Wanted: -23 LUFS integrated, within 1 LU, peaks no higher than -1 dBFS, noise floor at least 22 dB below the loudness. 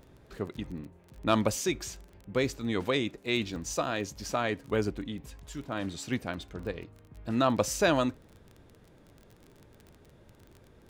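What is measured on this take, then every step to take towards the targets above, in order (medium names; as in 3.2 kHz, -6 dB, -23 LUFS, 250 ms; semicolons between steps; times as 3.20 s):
tick rate 22 per s; loudness -31.5 LUFS; peak level -11.0 dBFS; loudness target -23.0 LUFS
-> de-click; trim +8.5 dB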